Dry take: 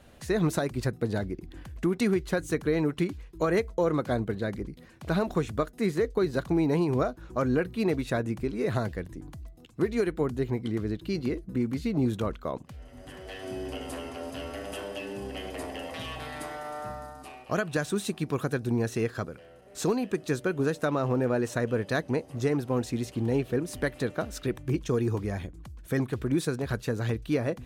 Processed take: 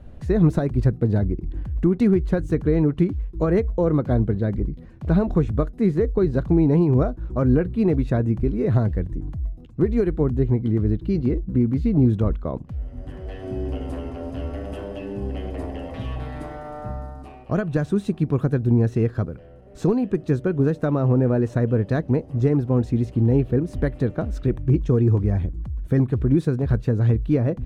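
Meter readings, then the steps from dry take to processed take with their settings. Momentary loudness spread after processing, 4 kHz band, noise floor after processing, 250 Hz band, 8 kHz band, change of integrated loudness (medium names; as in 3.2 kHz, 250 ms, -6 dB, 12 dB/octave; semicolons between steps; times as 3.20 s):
13 LU, no reading, -43 dBFS, +8.0 dB, under -10 dB, +7.5 dB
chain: tilt EQ -4 dB/octave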